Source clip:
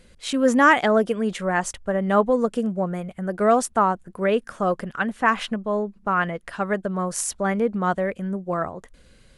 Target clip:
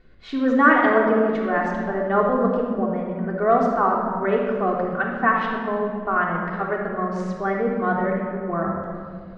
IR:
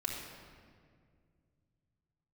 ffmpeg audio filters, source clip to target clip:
-filter_complex "[0:a]lowpass=f=4.4k:w=0.5412,lowpass=f=4.4k:w=1.3066,highshelf=f=2.1k:t=q:w=1.5:g=-6[a];[1:a]atrim=start_sample=2205[b];[a][b]afir=irnorm=-1:irlink=0,volume=-2dB"

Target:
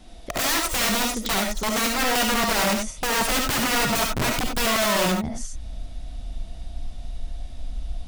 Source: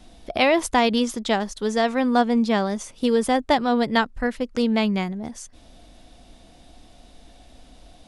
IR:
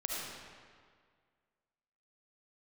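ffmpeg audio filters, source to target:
-filter_complex "[0:a]asubboost=boost=6:cutoff=140,aeval=exprs='(mod(9.44*val(0)+1,2)-1)/9.44':c=same[a];[1:a]atrim=start_sample=2205,atrim=end_sample=4410[b];[a][b]afir=irnorm=-1:irlink=0,volume=2dB"

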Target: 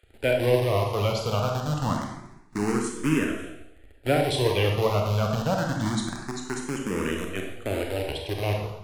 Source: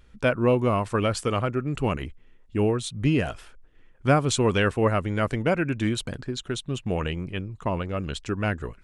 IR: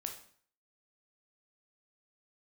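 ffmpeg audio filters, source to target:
-filter_complex "[0:a]acrossover=split=460|3900[a][b][c];[a]acrusher=bits=5:dc=4:mix=0:aa=0.000001[d];[d][b][c]amix=inputs=3:normalize=0[e];[1:a]atrim=start_sample=2205,asetrate=26019,aresample=44100[f];[e][f]afir=irnorm=-1:irlink=0,asplit=2[g][h];[h]afreqshift=0.26[i];[g][i]amix=inputs=2:normalize=1"

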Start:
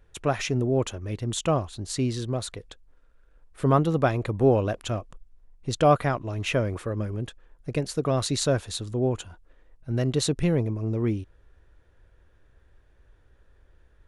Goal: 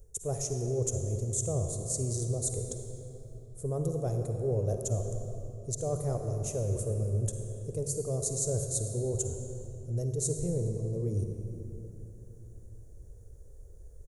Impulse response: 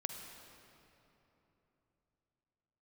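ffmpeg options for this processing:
-filter_complex "[0:a]firequalizer=gain_entry='entry(110,0);entry(280,-14);entry(420,1);entry(930,-19);entry(1600,-26);entry(3000,-26);entry(6600,9)':delay=0.05:min_phase=1,areverse,acompressor=threshold=-37dB:ratio=6,areverse[a];[1:a]atrim=start_sample=2205[b];[a][b]afir=irnorm=-1:irlink=0,volume=8dB"

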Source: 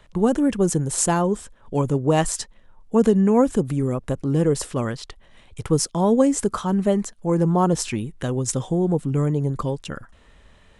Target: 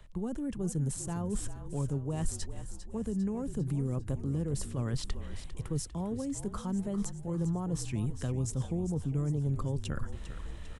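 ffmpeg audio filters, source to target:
-filter_complex "[0:a]areverse,acompressor=threshold=-36dB:ratio=4,areverse,highshelf=f=7.7k:g=7.5,acrossover=split=210[a][b];[b]acompressor=threshold=-38dB:ratio=6[c];[a][c]amix=inputs=2:normalize=0,lowshelf=f=160:g=11.5,asplit=7[d][e][f][g][h][i][j];[e]adelay=400,afreqshift=-41,volume=-11.5dB[k];[f]adelay=800,afreqshift=-82,volume=-16.4dB[l];[g]adelay=1200,afreqshift=-123,volume=-21.3dB[m];[h]adelay=1600,afreqshift=-164,volume=-26.1dB[n];[i]adelay=2000,afreqshift=-205,volume=-31dB[o];[j]adelay=2400,afreqshift=-246,volume=-35.9dB[p];[d][k][l][m][n][o][p]amix=inputs=7:normalize=0"

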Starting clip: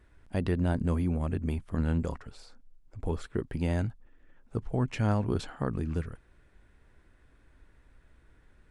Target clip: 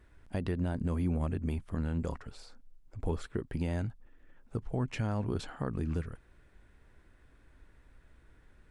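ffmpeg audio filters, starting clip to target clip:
-af "alimiter=limit=-22dB:level=0:latency=1:release=240"

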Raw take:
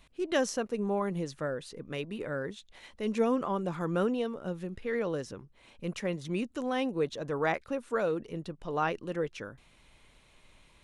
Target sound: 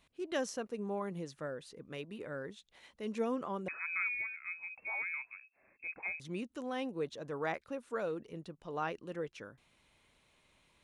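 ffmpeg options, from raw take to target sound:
-filter_complex "[0:a]highpass=f=92:p=1,asettb=1/sr,asplit=3[a][b][c];[a]atrim=end=3.684[d];[b]atrim=start=3.68:end=6.2,asetpts=PTS-STARTPTS,afade=t=in:d=0.004:c=qsin,afade=t=out:st=2.516:d=0.004:c=qsin,lowpass=f=2.3k:t=q:w=0.5098,lowpass=f=2.3k:t=q:w=0.6013,lowpass=f=2.3k:t=q:w=0.9,lowpass=f=2.3k:t=q:w=2.563,afreqshift=-2700[e];[c]atrim=start=6.196[f];[d][e]acrossfade=d=0.004:c1=hsin:c2=qsin[g];[g][f]acrossfade=d=0.004:c1=qsin:c2=hsin,volume=-7dB"

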